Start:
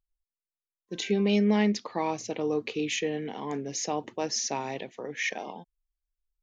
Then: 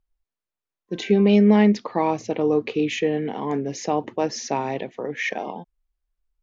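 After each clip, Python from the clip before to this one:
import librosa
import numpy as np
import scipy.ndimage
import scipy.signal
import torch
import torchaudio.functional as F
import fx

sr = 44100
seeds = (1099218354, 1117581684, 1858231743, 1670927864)

y = fx.lowpass(x, sr, hz=1600.0, slope=6)
y = y * librosa.db_to_amplitude(8.5)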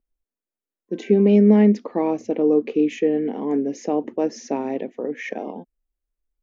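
y = fx.graphic_eq(x, sr, hz=(125, 250, 500, 1000, 4000), db=(-10, 11, 5, -4, -8))
y = y * librosa.db_to_amplitude(-4.0)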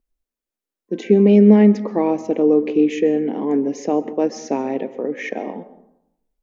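y = fx.rev_plate(x, sr, seeds[0], rt60_s=0.82, hf_ratio=0.45, predelay_ms=115, drr_db=14.5)
y = y * librosa.db_to_amplitude(3.0)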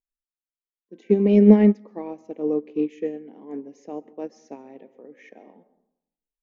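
y = fx.upward_expand(x, sr, threshold_db=-21.0, expansion=2.5)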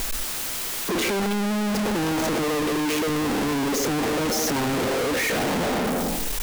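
y = np.sign(x) * np.sqrt(np.mean(np.square(x)))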